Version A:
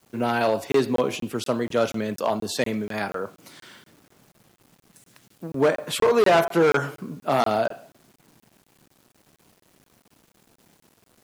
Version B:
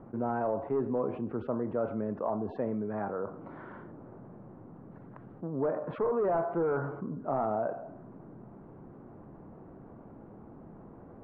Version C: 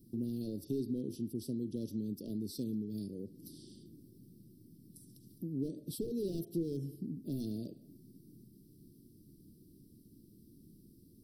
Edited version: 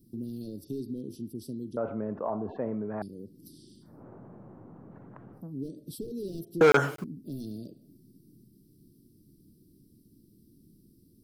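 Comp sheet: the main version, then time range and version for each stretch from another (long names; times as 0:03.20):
C
0:01.77–0:03.02: punch in from B
0:03.93–0:05.43: punch in from B, crossfade 0.24 s
0:06.61–0:07.04: punch in from A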